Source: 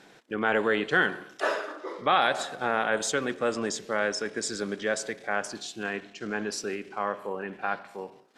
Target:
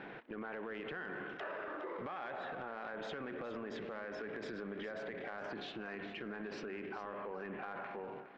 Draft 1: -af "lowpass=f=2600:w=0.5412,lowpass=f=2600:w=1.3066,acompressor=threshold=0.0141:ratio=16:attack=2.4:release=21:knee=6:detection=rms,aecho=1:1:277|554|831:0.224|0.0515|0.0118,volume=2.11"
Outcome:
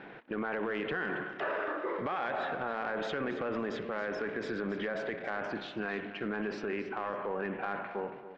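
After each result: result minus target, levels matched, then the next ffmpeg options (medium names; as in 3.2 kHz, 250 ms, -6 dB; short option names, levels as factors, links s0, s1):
compression: peak gain reduction -9.5 dB; echo 136 ms early
-af "lowpass=f=2600:w=0.5412,lowpass=f=2600:w=1.3066,acompressor=threshold=0.00447:ratio=16:attack=2.4:release=21:knee=6:detection=rms,aecho=1:1:277|554|831:0.224|0.0515|0.0118,volume=2.11"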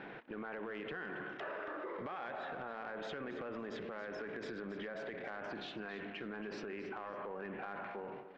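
echo 136 ms early
-af "lowpass=f=2600:w=0.5412,lowpass=f=2600:w=1.3066,acompressor=threshold=0.00447:ratio=16:attack=2.4:release=21:knee=6:detection=rms,aecho=1:1:413|826|1239:0.224|0.0515|0.0118,volume=2.11"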